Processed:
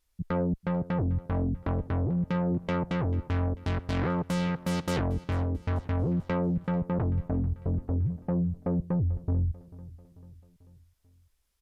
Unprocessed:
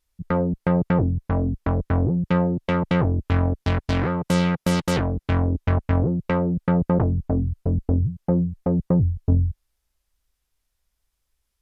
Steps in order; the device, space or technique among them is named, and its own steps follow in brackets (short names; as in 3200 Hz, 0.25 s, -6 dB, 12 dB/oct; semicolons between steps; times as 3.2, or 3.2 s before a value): soft clipper into limiter (soft clip -14 dBFS, distortion -18 dB; limiter -22.5 dBFS, peak gain reduction 8 dB); feedback echo 0.441 s, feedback 53%, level -19 dB